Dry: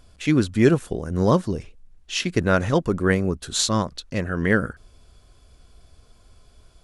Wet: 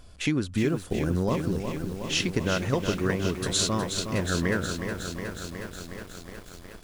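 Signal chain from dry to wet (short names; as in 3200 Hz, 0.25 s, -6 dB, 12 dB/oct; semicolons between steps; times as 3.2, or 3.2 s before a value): compressor 6:1, threshold -25 dBFS, peak gain reduction 14 dB; lo-fi delay 0.365 s, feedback 80%, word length 8-bit, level -7 dB; gain +2 dB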